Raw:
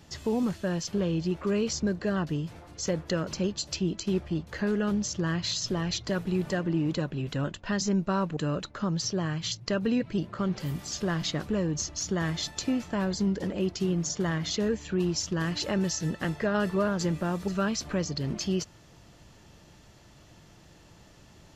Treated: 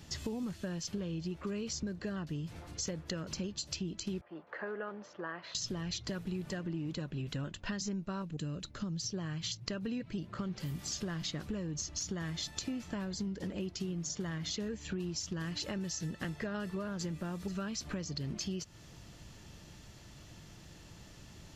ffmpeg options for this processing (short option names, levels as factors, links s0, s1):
-filter_complex "[0:a]asettb=1/sr,asplit=3[s0][s1][s2];[s0]atrim=end=4.214[s3];[s1]atrim=start=4.21:end=5.55,asetpts=PTS-STARTPTS,afade=t=in:d=0.004:c=qsin,afade=t=out:st=1.336:d=0.004:c=qsin,asuperpass=centerf=890:order=4:qfactor=0.78[s4];[s2]atrim=start=5.546[s5];[s3][s4]acrossfade=d=0.004:c1=hsin:c2=qsin[s6];[s6][s5]acrossfade=d=0.004:c1=qsin:c2=hsin,asettb=1/sr,asplit=3[s7][s8][s9];[s7]atrim=end=8.224[s10];[s8]atrim=start=8.22:end=9.14,asetpts=PTS-STARTPTS,afade=t=in:d=0.004:c=qsin,afade=t=out:st=0.916:d=0.004:c=qsin,equalizer=f=1100:t=o:w=2.6:g=-8.5[s11];[s9]atrim=start=9.136[s12];[s10][s11]acrossfade=d=0.004:c1=hsin:c2=qsin[s13];[s13][s12]acrossfade=d=0.004:c1=qsin:c2=hsin,equalizer=f=690:t=o:w=2.5:g=-5.5,acompressor=threshold=0.0126:ratio=6,volume=1.33"